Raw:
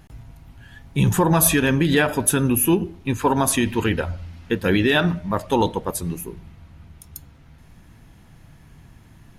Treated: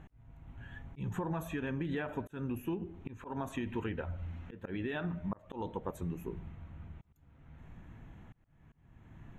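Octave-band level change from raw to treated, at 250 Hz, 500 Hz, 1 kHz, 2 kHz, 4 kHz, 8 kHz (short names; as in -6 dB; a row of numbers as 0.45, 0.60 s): -17.5, -18.5, -19.5, -20.0, -26.0, -36.5 dB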